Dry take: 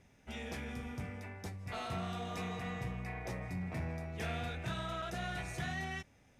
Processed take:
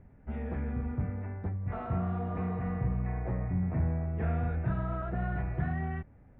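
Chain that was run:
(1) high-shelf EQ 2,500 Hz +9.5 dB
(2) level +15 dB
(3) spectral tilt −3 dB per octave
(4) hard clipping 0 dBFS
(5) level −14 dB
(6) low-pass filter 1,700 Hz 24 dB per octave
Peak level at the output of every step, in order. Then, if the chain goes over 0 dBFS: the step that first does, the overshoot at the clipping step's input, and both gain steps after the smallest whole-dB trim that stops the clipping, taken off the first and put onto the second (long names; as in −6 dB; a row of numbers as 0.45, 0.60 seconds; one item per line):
−25.5, −10.5, −5.5, −5.5, −19.5, −19.5 dBFS
no step passes full scale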